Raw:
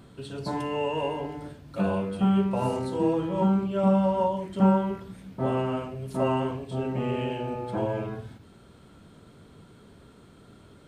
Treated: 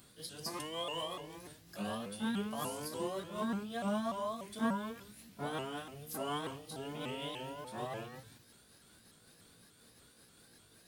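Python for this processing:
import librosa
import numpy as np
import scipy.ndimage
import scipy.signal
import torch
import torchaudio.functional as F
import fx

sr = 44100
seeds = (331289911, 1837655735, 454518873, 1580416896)

y = fx.pitch_ramps(x, sr, semitones=3.5, every_ms=294)
y = scipy.signal.lfilter([1.0, -0.9], [1.0], y)
y = F.gain(torch.from_numpy(y), 6.0).numpy()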